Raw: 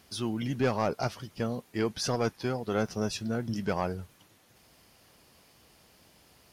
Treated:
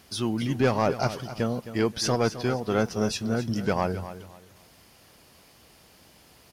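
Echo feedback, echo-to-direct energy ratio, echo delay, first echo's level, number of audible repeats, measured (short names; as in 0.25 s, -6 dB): 27%, -12.5 dB, 0.263 s, -13.0 dB, 2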